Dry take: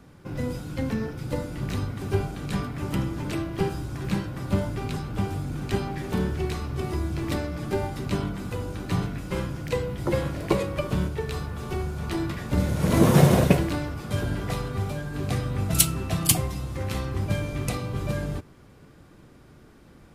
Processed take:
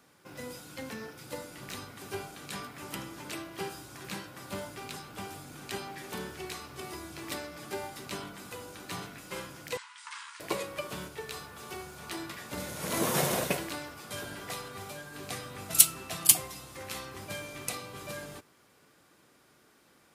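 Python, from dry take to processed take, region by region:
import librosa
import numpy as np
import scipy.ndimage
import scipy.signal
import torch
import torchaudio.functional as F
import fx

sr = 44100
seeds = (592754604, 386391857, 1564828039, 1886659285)

y = fx.chain(x, sr, fx.overload_stage(gain_db=27.5),
    fx.brickwall_bandpass(low_hz=850.0, high_hz=9800.0), at=(9.77, 10.4))
y = fx.highpass(y, sr, hz=800.0, slope=6)
y = fx.high_shelf(y, sr, hz=5400.0, db=7.0)
y = F.gain(torch.from_numpy(y), -4.0).numpy()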